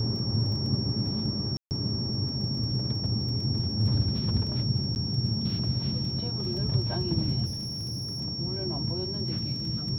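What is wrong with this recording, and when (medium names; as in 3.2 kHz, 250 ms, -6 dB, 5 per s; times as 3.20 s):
crackle 15 per s -37 dBFS
whine 5.5 kHz -33 dBFS
1.57–1.71 s: dropout 139 ms
4.95–4.96 s: dropout 9.9 ms
7.45–8.21 s: clipped -30 dBFS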